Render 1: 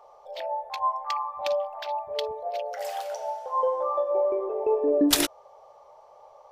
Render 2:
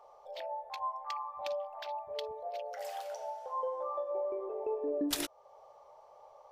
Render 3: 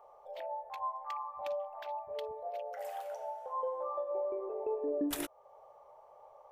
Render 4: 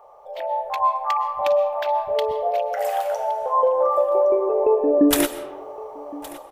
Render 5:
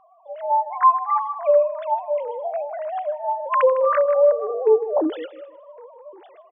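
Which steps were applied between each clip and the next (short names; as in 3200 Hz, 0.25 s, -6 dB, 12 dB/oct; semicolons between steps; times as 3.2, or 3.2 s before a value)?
compressor 1.5:1, threshold -38 dBFS, peak gain reduction 8 dB; gain -5 dB
bell 4800 Hz -11.5 dB 1.3 oct
AGC gain up to 8.5 dB; echo 1.116 s -19.5 dB; on a send at -13 dB: reverb RT60 1.0 s, pre-delay 85 ms; on the sum: gain +9 dB
sine-wave speech; feedback echo 0.156 s, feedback 31%, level -18 dB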